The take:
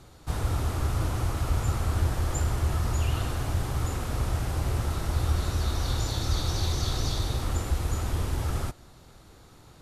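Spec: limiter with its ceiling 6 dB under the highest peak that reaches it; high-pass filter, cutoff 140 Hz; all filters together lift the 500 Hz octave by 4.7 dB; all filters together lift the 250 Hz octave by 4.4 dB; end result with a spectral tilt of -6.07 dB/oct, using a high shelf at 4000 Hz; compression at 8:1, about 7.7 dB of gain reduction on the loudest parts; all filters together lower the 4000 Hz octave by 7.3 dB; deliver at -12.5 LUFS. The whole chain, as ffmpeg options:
-af "highpass=140,equalizer=f=250:t=o:g=5.5,equalizer=f=500:t=o:g=4.5,highshelf=f=4k:g=-6.5,equalizer=f=4k:t=o:g=-5,acompressor=threshold=-35dB:ratio=8,volume=29.5dB,alimiter=limit=-3dB:level=0:latency=1"

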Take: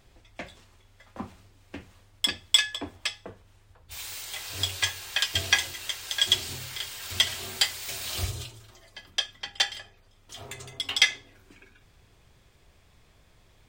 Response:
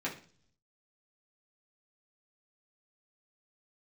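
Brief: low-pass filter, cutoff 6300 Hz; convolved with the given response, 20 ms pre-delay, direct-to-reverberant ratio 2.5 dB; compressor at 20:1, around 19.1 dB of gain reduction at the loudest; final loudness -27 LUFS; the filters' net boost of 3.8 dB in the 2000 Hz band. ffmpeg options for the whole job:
-filter_complex "[0:a]lowpass=6.3k,equalizer=f=2k:t=o:g=4.5,acompressor=threshold=-32dB:ratio=20,asplit=2[a][b];[1:a]atrim=start_sample=2205,adelay=20[c];[b][c]afir=irnorm=-1:irlink=0,volume=-7dB[d];[a][d]amix=inputs=2:normalize=0,volume=9.5dB"

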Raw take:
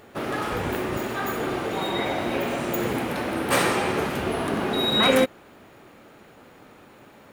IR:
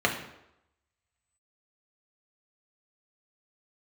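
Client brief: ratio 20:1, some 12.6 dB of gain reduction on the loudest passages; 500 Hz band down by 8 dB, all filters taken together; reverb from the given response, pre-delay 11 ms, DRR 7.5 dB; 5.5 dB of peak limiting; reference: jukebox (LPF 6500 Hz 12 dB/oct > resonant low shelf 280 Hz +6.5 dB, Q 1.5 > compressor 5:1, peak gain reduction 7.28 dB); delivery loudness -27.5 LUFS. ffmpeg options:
-filter_complex "[0:a]equalizer=f=500:t=o:g=-8.5,acompressor=threshold=-29dB:ratio=20,alimiter=level_in=1.5dB:limit=-24dB:level=0:latency=1,volume=-1.5dB,asplit=2[a][b];[1:a]atrim=start_sample=2205,adelay=11[c];[b][c]afir=irnorm=-1:irlink=0,volume=-21.5dB[d];[a][d]amix=inputs=2:normalize=0,lowpass=6.5k,lowshelf=f=280:t=q:w=1.5:g=6.5,acompressor=threshold=-32dB:ratio=5,volume=8.5dB"

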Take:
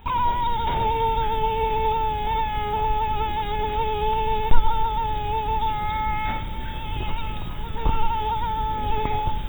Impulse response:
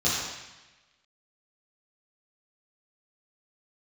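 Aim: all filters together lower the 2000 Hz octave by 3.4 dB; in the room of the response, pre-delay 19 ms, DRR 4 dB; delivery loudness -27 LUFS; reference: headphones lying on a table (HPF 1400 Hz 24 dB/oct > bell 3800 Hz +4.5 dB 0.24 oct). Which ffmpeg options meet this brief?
-filter_complex "[0:a]equalizer=f=2k:t=o:g=-4,asplit=2[a][b];[1:a]atrim=start_sample=2205,adelay=19[c];[b][c]afir=irnorm=-1:irlink=0,volume=-17dB[d];[a][d]amix=inputs=2:normalize=0,highpass=f=1.4k:w=0.5412,highpass=f=1.4k:w=1.3066,equalizer=f=3.8k:t=o:w=0.24:g=4.5,volume=8dB"

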